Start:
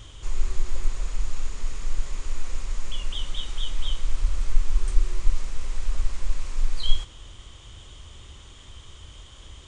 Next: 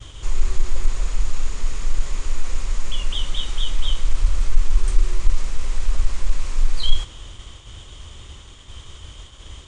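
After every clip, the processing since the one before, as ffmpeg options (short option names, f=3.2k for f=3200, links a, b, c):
-af "acontrast=56,agate=range=-33dB:threshold=-35dB:ratio=3:detection=peak"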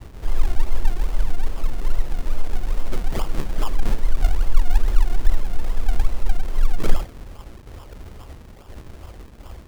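-af "acrusher=samples=42:mix=1:aa=0.000001:lfo=1:lforange=42:lforate=2.4"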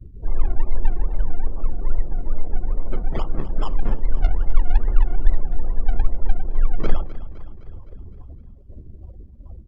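-af "afftdn=nr=32:nf=-36,aecho=1:1:257|514|771|1028|1285|1542:0.168|0.0974|0.0565|0.0328|0.019|0.011"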